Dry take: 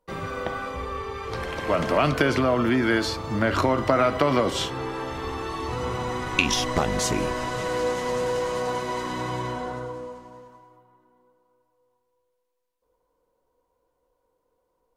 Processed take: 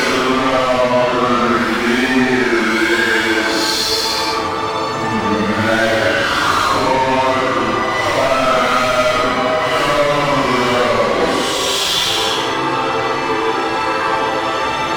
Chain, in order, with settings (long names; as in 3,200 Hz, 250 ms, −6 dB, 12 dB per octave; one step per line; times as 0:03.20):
mid-hump overdrive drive 32 dB, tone 5,100 Hz, clips at −2.5 dBFS
extreme stretch with random phases 5.3×, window 0.10 s, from 0:02.35
level −4.5 dB